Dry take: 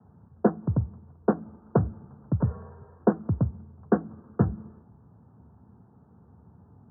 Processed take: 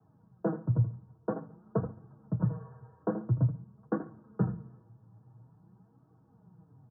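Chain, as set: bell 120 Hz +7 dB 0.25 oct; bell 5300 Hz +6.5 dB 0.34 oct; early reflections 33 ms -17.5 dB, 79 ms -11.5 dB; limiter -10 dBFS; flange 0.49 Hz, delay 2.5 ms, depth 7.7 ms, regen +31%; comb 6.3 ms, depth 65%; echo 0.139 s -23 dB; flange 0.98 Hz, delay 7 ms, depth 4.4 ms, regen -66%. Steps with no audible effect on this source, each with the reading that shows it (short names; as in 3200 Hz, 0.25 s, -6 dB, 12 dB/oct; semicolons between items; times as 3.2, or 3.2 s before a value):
bell 5300 Hz: input band ends at 1100 Hz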